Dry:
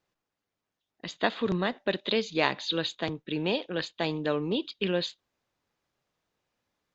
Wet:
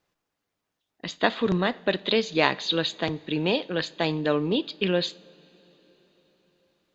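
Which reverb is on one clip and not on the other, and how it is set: two-slope reverb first 0.41 s, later 4.8 s, from -18 dB, DRR 17 dB; trim +4 dB

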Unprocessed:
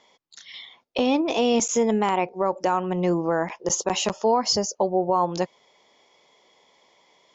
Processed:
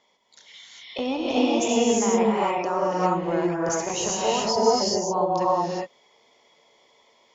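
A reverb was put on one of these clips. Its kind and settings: gated-style reverb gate 430 ms rising, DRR -5.5 dB; trim -6.5 dB

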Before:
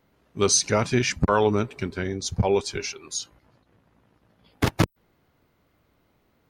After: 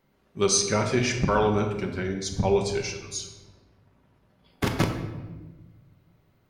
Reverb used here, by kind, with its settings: simulated room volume 770 m³, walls mixed, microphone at 1.1 m; trim -3.5 dB

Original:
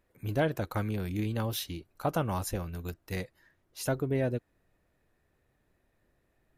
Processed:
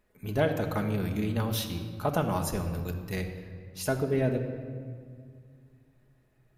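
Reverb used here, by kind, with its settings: simulated room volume 3600 m³, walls mixed, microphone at 1.4 m; trim +1 dB

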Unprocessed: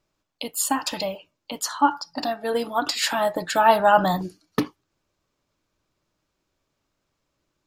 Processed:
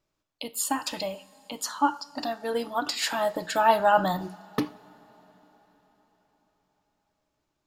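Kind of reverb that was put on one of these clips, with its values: two-slope reverb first 0.46 s, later 4.8 s, from -17 dB, DRR 14.5 dB; trim -4.5 dB

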